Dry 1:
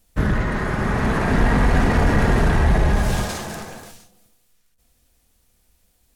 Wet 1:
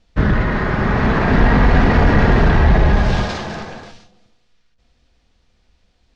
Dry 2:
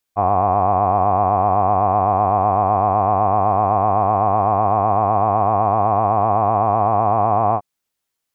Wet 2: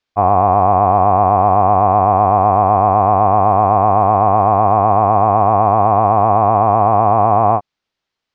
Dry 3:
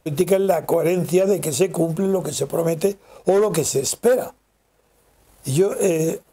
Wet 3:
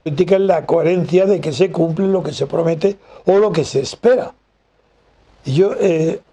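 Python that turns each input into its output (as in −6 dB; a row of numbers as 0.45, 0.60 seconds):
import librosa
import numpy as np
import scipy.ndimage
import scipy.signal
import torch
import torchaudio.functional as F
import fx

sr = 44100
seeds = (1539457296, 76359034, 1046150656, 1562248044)

y = scipy.signal.sosfilt(scipy.signal.butter(4, 5000.0, 'lowpass', fs=sr, output='sos'), x)
y = y * librosa.db_to_amplitude(4.5)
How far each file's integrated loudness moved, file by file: +4.5, +4.5, +4.0 LU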